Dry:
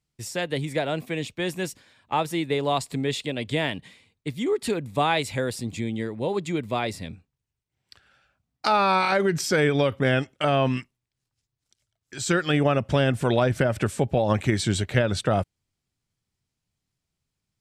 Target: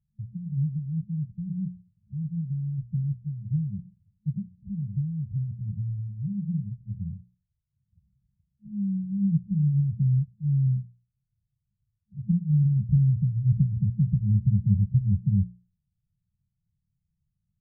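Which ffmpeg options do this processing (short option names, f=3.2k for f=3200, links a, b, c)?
-af "bandreject=f=60:t=h:w=6,bandreject=f=120:t=h:w=6,bandreject=f=180:t=h:w=6,afftfilt=real='re*(1-between(b*sr/4096,210,11000))':imag='im*(1-between(b*sr/4096,210,11000))':win_size=4096:overlap=0.75,afftfilt=real='re*lt(b*sr/1024,590*pow(4400/590,0.5+0.5*sin(2*PI*1.2*pts/sr)))':imag='im*lt(b*sr/1024,590*pow(4400/590,0.5+0.5*sin(2*PI*1.2*pts/sr)))':win_size=1024:overlap=0.75,volume=6dB"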